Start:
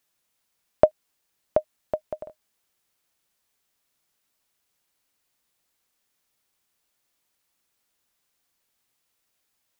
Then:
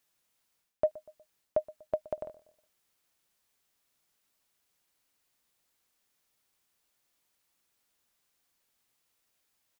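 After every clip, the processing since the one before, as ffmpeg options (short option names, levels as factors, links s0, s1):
-filter_complex "[0:a]areverse,acompressor=threshold=0.0708:ratio=10,areverse,asplit=2[s0][s1];[s1]adelay=121,lowpass=f=2000:p=1,volume=0.1,asplit=2[s2][s3];[s3]adelay=121,lowpass=f=2000:p=1,volume=0.46,asplit=2[s4][s5];[s5]adelay=121,lowpass=f=2000:p=1,volume=0.46[s6];[s0][s2][s4][s6]amix=inputs=4:normalize=0,volume=0.841"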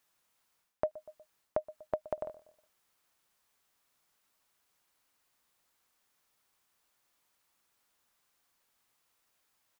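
-af "acompressor=threshold=0.0251:ratio=4,equalizer=f=1100:w=0.99:g=5.5"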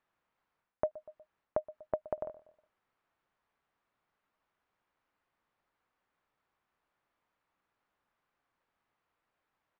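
-af "lowpass=1900"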